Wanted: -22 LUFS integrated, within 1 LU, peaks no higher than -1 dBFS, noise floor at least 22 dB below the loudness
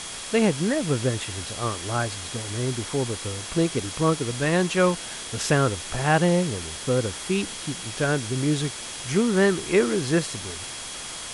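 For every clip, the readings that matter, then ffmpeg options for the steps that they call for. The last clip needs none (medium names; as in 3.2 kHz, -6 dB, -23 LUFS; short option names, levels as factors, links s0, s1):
steady tone 3.3 kHz; tone level -43 dBFS; noise floor -36 dBFS; noise floor target -47 dBFS; loudness -25.0 LUFS; peak level -7.0 dBFS; loudness target -22.0 LUFS
-> -af "bandreject=f=3300:w=30"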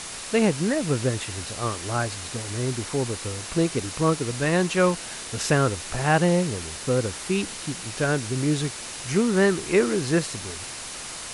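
steady tone not found; noise floor -36 dBFS; noise floor target -47 dBFS
-> -af "afftdn=nr=11:nf=-36"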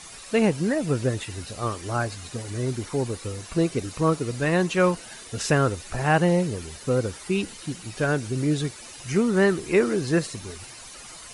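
noise floor -43 dBFS; noise floor target -47 dBFS
-> -af "afftdn=nr=6:nf=-43"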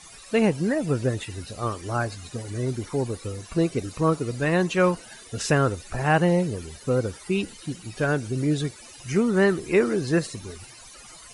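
noise floor -46 dBFS; noise floor target -47 dBFS
-> -af "afftdn=nr=6:nf=-46"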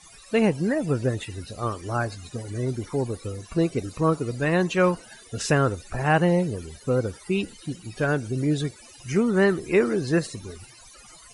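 noise floor -49 dBFS; loudness -25.0 LUFS; peak level -7.0 dBFS; loudness target -22.0 LUFS
-> -af "volume=1.41"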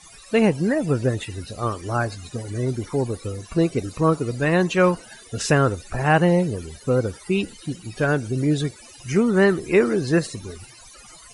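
loudness -22.0 LUFS; peak level -4.0 dBFS; noise floor -46 dBFS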